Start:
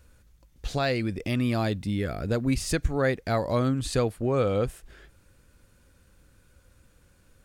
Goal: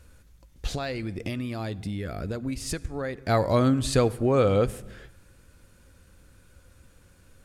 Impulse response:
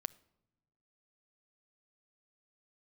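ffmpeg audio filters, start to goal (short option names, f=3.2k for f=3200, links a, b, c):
-filter_complex "[0:a]asettb=1/sr,asplit=3[a][b][c];[a]atrim=end=0.734[d];[b]atrim=start=0.73:end=3.29,asetpts=PTS-STARTPTS,afade=t=in:d=0.004:c=qsin,afade=t=out:st=2.556:d=0.004:c=qsin,acompressor=threshold=-32dB:ratio=6[e];[c]atrim=start=3.286[f];[d][e]acrossfade=d=0.004:c1=hsin:c2=qsin[g];[g][f]acrossfade=d=0.004:c1=qsin:c2=hsin[h];[1:a]atrim=start_sample=2205,afade=t=out:st=0.32:d=0.01,atrim=end_sample=14553,asetrate=26460,aresample=44100[i];[h][i]afir=irnorm=-1:irlink=0,volume=3dB"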